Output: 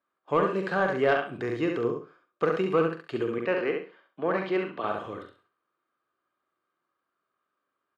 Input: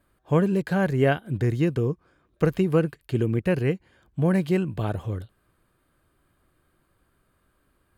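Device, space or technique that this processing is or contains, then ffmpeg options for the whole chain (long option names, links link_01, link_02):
intercom: -filter_complex "[0:a]agate=range=-14dB:threshold=-55dB:ratio=16:detection=peak,asettb=1/sr,asplit=3[link_01][link_02][link_03];[link_01]atrim=end=3.384[link_04];[link_02]atrim=start=3.38:end=4.84,asetpts=PTS-STARTPTS,afade=type=in:duration=0.004:curve=qsin,afade=type=out:start_time=1.456:duration=0.004:curve=qsin,acrossover=split=190 5300:gain=0.0794 1 0.0708[link_05][link_06][link_07];[link_05][link_06][link_07]amix=inputs=3:normalize=0[link_08];[link_03]atrim=start=4.836[link_09];[link_04][link_08]acrossfade=duration=0.004:curve1=hsin:curve2=qsin[link_10];[link_10][link_09]acrossfade=duration=0.004:curve1=qsin:curve2=hsin,highpass=360,lowpass=4400,equalizer=frequency=1200:width_type=o:width=0.31:gain=9,aecho=1:1:68|136|204:0.562|0.129|0.0297,asoftclip=type=tanh:threshold=-12.5dB,asplit=2[link_11][link_12];[link_12]adelay=43,volume=-10dB[link_13];[link_11][link_13]amix=inputs=2:normalize=0"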